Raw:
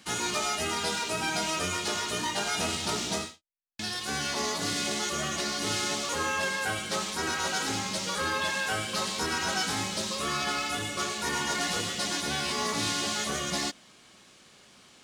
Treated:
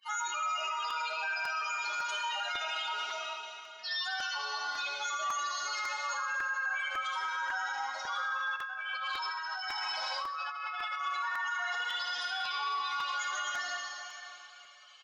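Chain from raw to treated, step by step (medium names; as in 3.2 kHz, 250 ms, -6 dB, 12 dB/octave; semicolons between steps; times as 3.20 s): spectral contrast enhancement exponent 3.9; high-pass 890 Hz 24 dB/octave; feedback delay 75 ms, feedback 56%, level -9 dB; plate-style reverb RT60 2.8 s, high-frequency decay 1×, DRR -0.5 dB; 8.56–11.01 s: compressor with a negative ratio -36 dBFS, ratio -1; peak limiter -26.5 dBFS, peak gain reduction 11 dB; crackling interface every 0.55 s, samples 128, repeat, from 0.90 s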